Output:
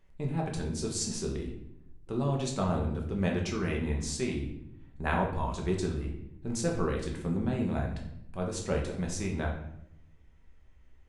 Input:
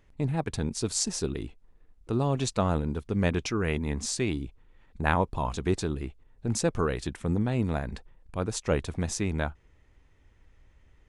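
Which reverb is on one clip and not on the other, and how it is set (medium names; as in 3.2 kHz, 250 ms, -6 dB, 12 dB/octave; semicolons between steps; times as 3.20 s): simulated room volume 190 m³, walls mixed, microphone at 1.1 m; trim -7 dB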